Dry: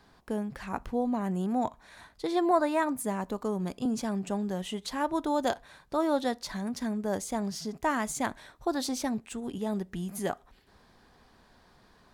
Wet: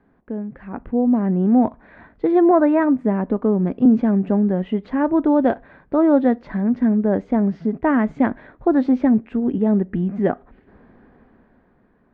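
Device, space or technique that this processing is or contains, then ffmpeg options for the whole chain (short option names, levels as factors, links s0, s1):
action camera in a waterproof case: -af "lowpass=f=2000:w=0.5412,lowpass=f=2000:w=1.3066,equalizer=f=250:t=o:w=1:g=8,equalizer=f=500:t=o:w=1:g=3,equalizer=f=1000:t=o:w=1:g=-5,equalizer=f=8000:t=o:w=1:g=4,dynaudnorm=f=160:g=13:m=3.55,volume=0.841" -ar 32000 -c:a aac -b:a 64k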